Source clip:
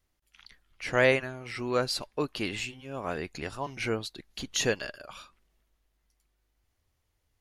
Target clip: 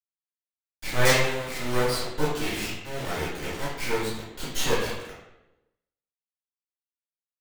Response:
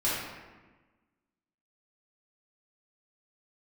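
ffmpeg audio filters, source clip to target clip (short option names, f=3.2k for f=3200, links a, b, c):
-filter_complex "[0:a]acrusher=bits=3:dc=4:mix=0:aa=0.000001[a];[1:a]atrim=start_sample=2205,asetrate=66150,aresample=44100[b];[a][b]afir=irnorm=-1:irlink=0"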